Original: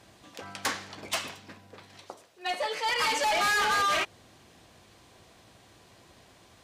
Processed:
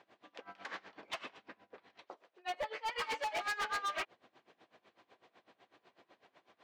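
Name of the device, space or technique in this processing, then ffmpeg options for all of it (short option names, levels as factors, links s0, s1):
helicopter radio: -filter_complex "[0:a]asettb=1/sr,asplit=3[s0][s1][s2];[s0]atrim=end=2.944[s3];[s1]atrim=start=2.94:end=3.54,asetpts=PTS-STARTPTS,afade=t=in:d=0.004:c=qsin,afade=t=out:st=0.596:d=0.004:c=qsin,highshelf=f=11000:g=11.5[s4];[s2]atrim=start=3.536[s5];[s3][s4]acrossfade=d=0.004:c1=hsin:c2=qsin[s6];[s6][s5]acrossfade=d=0.004:c1=qsin:c2=hsin,highpass=320,lowpass=2700,aeval=exprs='val(0)*pow(10,-21*(0.5-0.5*cos(2*PI*8*n/s))/20)':c=same,asoftclip=type=hard:threshold=0.0266,volume=0.841"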